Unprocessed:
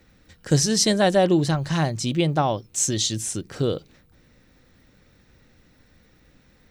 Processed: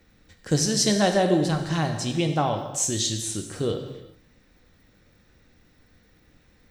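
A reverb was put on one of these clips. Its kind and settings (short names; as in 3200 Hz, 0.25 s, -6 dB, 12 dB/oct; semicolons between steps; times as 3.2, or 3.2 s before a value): non-linear reverb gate 0.42 s falling, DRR 4.5 dB; gain -3 dB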